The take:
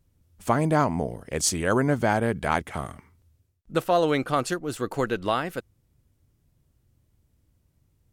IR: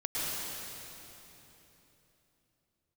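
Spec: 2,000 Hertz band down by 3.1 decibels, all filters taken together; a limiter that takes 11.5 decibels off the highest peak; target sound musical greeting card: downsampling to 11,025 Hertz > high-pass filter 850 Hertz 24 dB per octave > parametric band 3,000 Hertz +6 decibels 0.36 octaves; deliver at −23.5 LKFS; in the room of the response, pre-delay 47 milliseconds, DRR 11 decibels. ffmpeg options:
-filter_complex "[0:a]equalizer=frequency=2000:width_type=o:gain=-5,alimiter=limit=-20dB:level=0:latency=1,asplit=2[link_01][link_02];[1:a]atrim=start_sample=2205,adelay=47[link_03];[link_02][link_03]afir=irnorm=-1:irlink=0,volume=-18.5dB[link_04];[link_01][link_04]amix=inputs=2:normalize=0,aresample=11025,aresample=44100,highpass=frequency=850:width=0.5412,highpass=frequency=850:width=1.3066,equalizer=frequency=3000:width_type=o:width=0.36:gain=6,volume=15.5dB"

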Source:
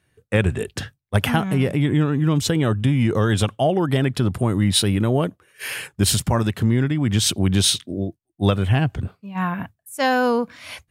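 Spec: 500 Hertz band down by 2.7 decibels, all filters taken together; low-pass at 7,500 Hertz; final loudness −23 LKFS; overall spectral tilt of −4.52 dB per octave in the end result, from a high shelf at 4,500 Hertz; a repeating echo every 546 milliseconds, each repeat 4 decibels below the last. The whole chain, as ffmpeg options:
ffmpeg -i in.wav -af "lowpass=7500,equalizer=frequency=500:width_type=o:gain=-3.5,highshelf=frequency=4500:gain=7,aecho=1:1:546|1092|1638|2184|2730|3276|3822|4368|4914:0.631|0.398|0.25|0.158|0.0994|0.0626|0.0394|0.0249|0.0157,volume=-4dB" out.wav

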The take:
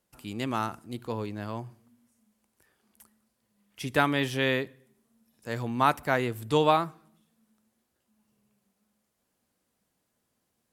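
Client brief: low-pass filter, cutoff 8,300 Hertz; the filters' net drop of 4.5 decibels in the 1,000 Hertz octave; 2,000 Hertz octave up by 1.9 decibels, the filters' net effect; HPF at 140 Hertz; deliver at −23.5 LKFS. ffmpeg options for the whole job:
ffmpeg -i in.wav -af "highpass=140,lowpass=8300,equalizer=frequency=1000:width_type=o:gain=-7.5,equalizer=frequency=2000:width_type=o:gain=5,volume=6.5dB" out.wav

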